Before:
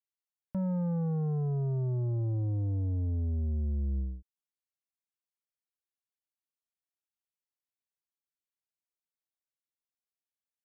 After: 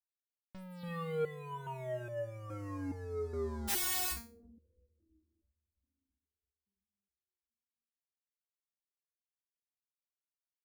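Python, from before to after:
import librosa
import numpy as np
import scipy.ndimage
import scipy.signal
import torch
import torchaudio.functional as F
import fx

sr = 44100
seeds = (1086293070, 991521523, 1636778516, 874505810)

y = fx.spec_flatten(x, sr, power=0.1, at=(3.67, 4.11), fade=0.02)
y = fx.leveller(y, sr, passes=5)
y = fx.echo_bbd(y, sr, ms=330, stages=1024, feedback_pct=55, wet_db=-19)
y = fx.resonator_held(y, sr, hz=2.4, low_hz=200.0, high_hz=580.0)
y = y * librosa.db_to_amplitude(2.5)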